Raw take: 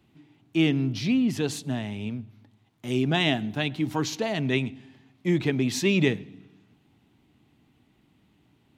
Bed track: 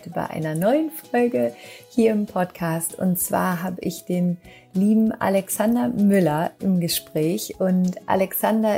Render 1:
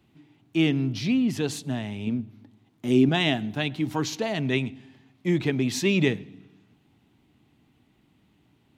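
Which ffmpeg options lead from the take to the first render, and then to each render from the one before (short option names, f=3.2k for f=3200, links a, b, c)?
-filter_complex "[0:a]asettb=1/sr,asplit=3[a][b][c];[a]atrim=end=2.074[d];[b]atrim=start=2.07:end=3.09,asetpts=PTS-STARTPTS,afade=t=in:d=0.004:c=qsin,afade=t=out:st=1.016:d=0.004:c=qsin,equalizer=f=280:w=1:g=8[e];[c]atrim=start=3.086[f];[d][e]acrossfade=d=0.004:c1=hsin:c2=qsin[g];[g][f]acrossfade=d=0.004:c1=qsin:c2=hsin"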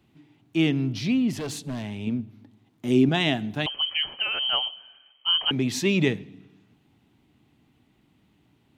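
-filter_complex "[0:a]asettb=1/sr,asplit=3[a][b][c];[a]atrim=end=1.324[d];[b]atrim=start=1.32:end=1.98,asetpts=PTS-STARTPTS,afade=t=in:d=0.004:c=qsin,afade=t=out:st=0.656:d=0.004:c=qsin,asoftclip=type=hard:threshold=-28dB[e];[c]atrim=start=1.976[f];[d][e]acrossfade=d=0.004:c1=hsin:c2=qsin[g];[g][f]acrossfade=d=0.004:c1=qsin:c2=hsin,asettb=1/sr,asplit=3[h][i][j];[h]atrim=end=3.664[k];[i]atrim=start=3.66:end=5.51,asetpts=PTS-STARTPTS,afade=t=in:d=0.004:c=qsin,afade=t=out:st=1.846:d=0.004:c=qsin,lowpass=f=2.8k:t=q:w=0.5098,lowpass=f=2.8k:t=q:w=0.6013,lowpass=f=2.8k:t=q:w=0.9,lowpass=f=2.8k:t=q:w=2.563,afreqshift=-3300[l];[j]atrim=start=5.506[m];[k][l]acrossfade=d=0.004:c1=hsin:c2=qsin[n];[n][m]acrossfade=d=0.004:c1=qsin:c2=hsin"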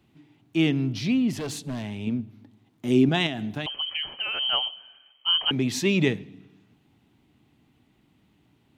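-filter_complex "[0:a]asettb=1/sr,asplit=3[a][b][c];[a]atrim=end=3.264[d];[b]atrim=start=3.26:end=4.39,asetpts=PTS-STARTPTS,afade=t=in:d=0.004:c=qsin,afade=t=out:st=1.126:d=0.004:c=qsin,acompressor=threshold=-25dB:ratio=6:attack=3.2:release=140:knee=1:detection=peak[e];[c]atrim=start=4.386[f];[d][e]acrossfade=d=0.004:c1=hsin:c2=qsin[g];[g][f]acrossfade=d=0.004:c1=qsin:c2=hsin"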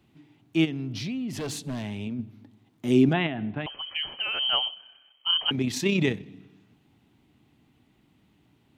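-filter_complex "[0:a]asplit=3[a][b][c];[a]afade=t=out:st=0.64:d=0.02[d];[b]acompressor=threshold=-29dB:ratio=6:attack=3.2:release=140:knee=1:detection=peak,afade=t=in:st=0.64:d=0.02,afade=t=out:st=2.18:d=0.02[e];[c]afade=t=in:st=2.18:d=0.02[f];[d][e][f]amix=inputs=3:normalize=0,asettb=1/sr,asplit=3[g][h][i];[g]atrim=end=3.134[j];[h]atrim=start=3.13:end=3.96,asetpts=PTS-STARTPTS,afade=t=in:d=0.004:c=qsin,afade=t=out:st=0.826:d=0.004:c=qsin,lowpass=f=2.6k:w=0.5412,lowpass=f=2.6k:w=1.3066[k];[i]atrim=start=3.956[l];[j][k]acrossfade=d=0.004:c1=hsin:c2=qsin[m];[m][l]acrossfade=d=0.004:c1=qsin:c2=hsin,asettb=1/sr,asplit=3[n][o][p];[n]atrim=end=4.744[q];[o]atrim=start=4.74:end=6.26,asetpts=PTS-STARTPTS,afade=t=in:d=0.004:c=qsin,afade=t=out:st=1.516:d=0.004:c=qsin,tremolo=f=32:d=0.4[r];[p]atrim=start=6.256[s];[q][r]acrossfade=d=0.004:c1=hsin:c2=qsin[t];[t][s]acrossfade=d=0.004:c1=qsin:c2=hsin"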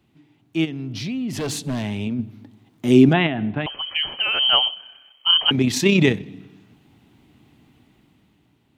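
-af "dynaudnorm=f=190:g=11:m=9dB"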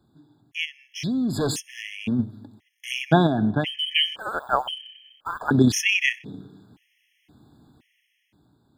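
-filter_complex "[0:a]asplit=2[a][b];[b]aeval=exprs='sgn(val(0))*max(abs(val(0))-0.0141,0)':c=same,volume=-8dB[c];[a][c]amix=inputs=2:normalize=0,afftfilt=real='re*gt(sin(2*PI*0.96*pts/sr)*(1-2*mod(floor(b*sr/1024/1700),2)),0)':imag='im*gt(sin(2*PI*0.96*pts/sr)*(1-2*mod(floor(b*sr/1024/1700),2)),0)':win_size=1024:overlap=0.75"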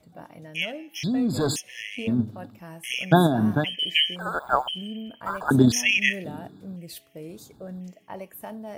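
-filter_complex "[1:a]volume=-18dB[a];[0:a][a]amix=inputs=2:normalize=0"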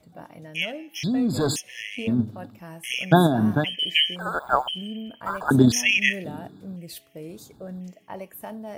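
-af "volume=1dB"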